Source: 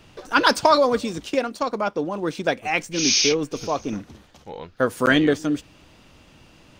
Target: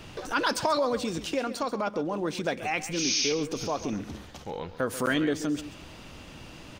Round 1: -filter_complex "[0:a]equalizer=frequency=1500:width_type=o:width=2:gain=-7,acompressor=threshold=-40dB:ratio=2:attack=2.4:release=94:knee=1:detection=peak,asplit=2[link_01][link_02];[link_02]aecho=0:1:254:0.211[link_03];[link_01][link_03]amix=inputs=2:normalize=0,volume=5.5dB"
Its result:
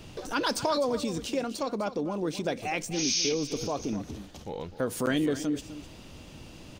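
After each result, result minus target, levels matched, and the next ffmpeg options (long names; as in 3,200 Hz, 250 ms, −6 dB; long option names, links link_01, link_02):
echo 119 ms late; 2,000 Hz band −3.5 dB
-filter_complex "[0:a]equalizer=frequency=1500:width_type=o:width=2:gain=-7,acompressor=threshold=-40dB:ratio=2:attack=2.4:release=94:knee=1:detection=peak,asplit=2[link_01][link_02];[link_02]aecho=0:1:135:0.211[link_03];[link_01][link_03]amix=inputs=2:normalize=0,volume=5.5dB"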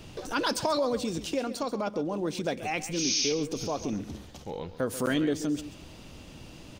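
2,000 Hz band −3.5 dB
-filter_complex "[0:a]acompressor=threshold=-40dB:ratio=2:attack=2.4:release=94:knee=1:detection=peak,asplit=2[link_01][link_02];[link_02]aecho=0:1:135:0.211[link_03];[link_01][link_03]amix=inputs=2:normalize=0,volume=5.5dB"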